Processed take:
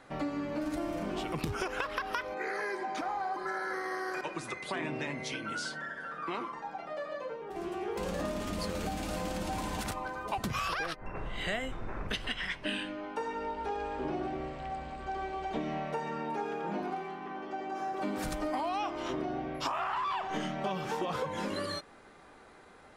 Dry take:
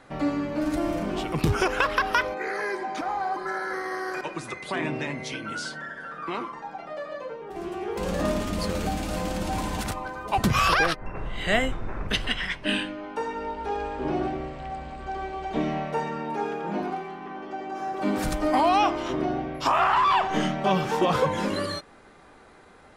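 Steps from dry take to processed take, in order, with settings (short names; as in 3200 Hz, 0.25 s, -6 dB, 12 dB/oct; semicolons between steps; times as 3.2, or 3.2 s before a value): low shelf 190 Hz -3.5 dB; compressor, threshold -28 dBFS, peak gain reduction 10.5 dB; gain -3 dB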